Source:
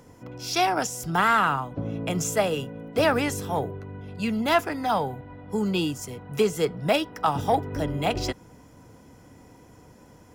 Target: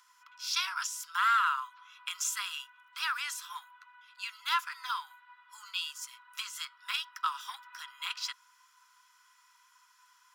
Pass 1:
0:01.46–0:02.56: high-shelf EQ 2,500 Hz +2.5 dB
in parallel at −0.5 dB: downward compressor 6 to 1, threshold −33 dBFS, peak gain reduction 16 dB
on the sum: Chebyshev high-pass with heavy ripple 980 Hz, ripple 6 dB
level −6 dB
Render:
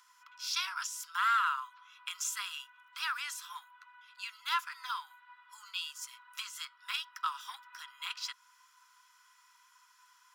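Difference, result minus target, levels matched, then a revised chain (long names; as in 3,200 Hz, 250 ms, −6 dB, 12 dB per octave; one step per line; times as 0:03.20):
downward compressor: peak gain reduction +9.5 dB
0:01.46–0:02.56: high-shelf EQ 2,500 Hz +2.5 dB
in parallel at −0.5 dB: downward compressor 6 to 1, threshold −21.5 dBFS, peak gain reduction 6.5 dB
on the sum: Chebyshev high-pass with heavy ripple 980 Hz, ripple 6 dB
level −6 dB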